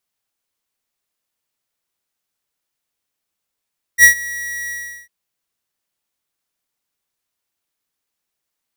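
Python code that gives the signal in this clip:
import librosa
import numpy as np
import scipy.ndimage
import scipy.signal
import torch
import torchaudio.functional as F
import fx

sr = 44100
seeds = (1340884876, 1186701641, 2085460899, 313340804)

y = fx.adsr_tone(sr, wave='square', hz=1920.0, attack_ms=58.0, decay_ms=102.0, sustain_db=-21.0, held_s=0.72, release_ms=380.0, level_db=-5.0)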